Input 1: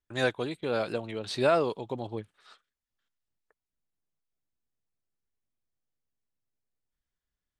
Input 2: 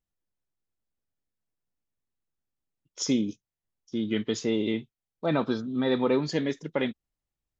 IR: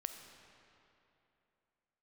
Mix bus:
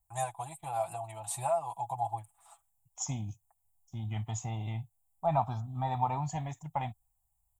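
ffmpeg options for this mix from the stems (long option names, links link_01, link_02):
-filter_complex "[0:a]equalizer=frequency=5800:width=0.62:gain=-4.5,aecho=1:1:6:0.86,acompressor=threshold=-26dB:ratio=6,volume=-0.5dB[link_01];[1:a]acontrast=72,bass=frequency=250:gain=10,treble=frequency=4000:gain=-9,volume=-7dB[link_02];[link_01][link_02]amix=inputs=2:normalize=0,firequalizer=gain_entry='entry(110,0);entry(210,-22);entry(470,-29);entry(740,13);entry(1500,-17);entry(2400,-9);entry(4600,-16);entry(7400,15)':delay=0.05:min_phase=1"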